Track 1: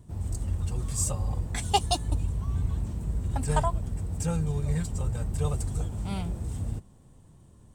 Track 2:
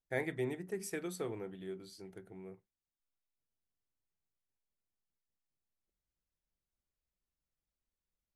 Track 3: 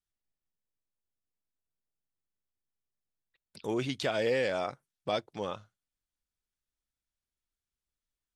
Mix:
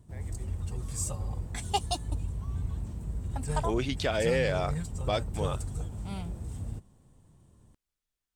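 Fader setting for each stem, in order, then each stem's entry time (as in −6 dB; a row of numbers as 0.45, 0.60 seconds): −5.0, −17.0, +1.5 decibels; 0.00, 0.00, 0.00 seconds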